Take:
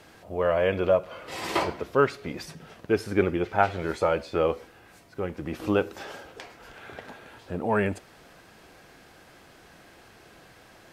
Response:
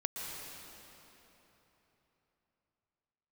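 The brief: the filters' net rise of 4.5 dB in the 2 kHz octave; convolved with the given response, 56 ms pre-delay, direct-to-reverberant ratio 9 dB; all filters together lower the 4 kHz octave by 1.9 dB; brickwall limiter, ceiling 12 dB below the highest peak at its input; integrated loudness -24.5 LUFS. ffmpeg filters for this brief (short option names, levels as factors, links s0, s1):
-filter_complex "[0:a]equalizer=f=2000:t=o:g=7.5,equalizer=f=4000:t=o:g=-6,alimiter=limit=0.178:level=0:latency=1,asplit=2[s0][s1];[1:a]atrim=start_sample=2205,adelay=56[s2];[s1][s2]afir=irnorm=-1:irlink=0,volume=0.266[s3];[s0][s3]amix=inputs=2:normalize=0,volume=1.88"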